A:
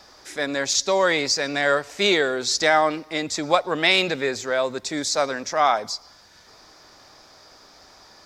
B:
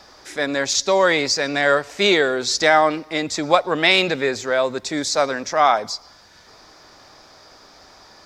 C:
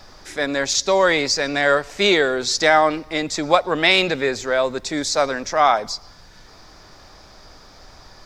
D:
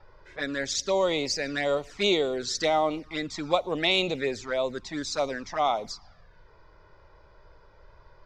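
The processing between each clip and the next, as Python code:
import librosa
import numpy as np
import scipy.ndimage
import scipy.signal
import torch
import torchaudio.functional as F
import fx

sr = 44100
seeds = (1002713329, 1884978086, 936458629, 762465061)

y1 = fx.high_shelf(x, sr, hz=5500.0, db=-4.5)
y1 = y1 * librosa.db_to_amplitude(3.5)
y2 = fx.dmg_noise_colour(y1, sr, seeds[0], colour='brown', level_db=-47.0)
y3 = fx.env_lowpass(y2, sr, base_hz=1700.0, full_db=-16.0)
y3 = fx.env_flanger(y3, sr, rest_ms=2.2, full_db=-15.0)
y3 = y3 * librosa.db_to_amplitude(-6.0)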